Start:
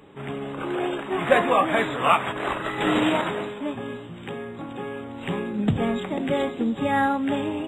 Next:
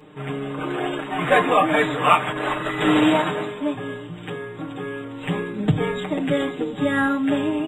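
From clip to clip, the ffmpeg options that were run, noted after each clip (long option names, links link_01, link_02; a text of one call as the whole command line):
ffmpeg -i in.wav -af "aecho=1:1:6.6:0.98" out.wav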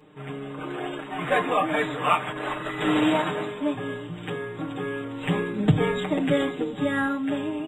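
ffmpeg -i in.wav -af "dynaudnorm=framelen=220:gausssize=11:maxgain=11.5dB,volume=-6.5dB" out.wav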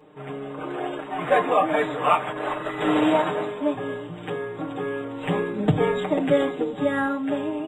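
ffmpeg -i in.wav -af "equalizer=frequency=630:width_type=o:width=2:gain=8,volume=-3dB" out.wav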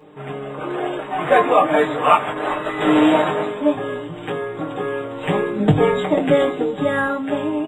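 ffmpeg -i in.wav -filter_complex "[0:a]asplit=2[link_01][link_02];[link_02]adelay=20,volume=-6.5dB[link_03];[link_01][link_03]amix=inputs=2:normalize=0,volume=4.5dB" out.wav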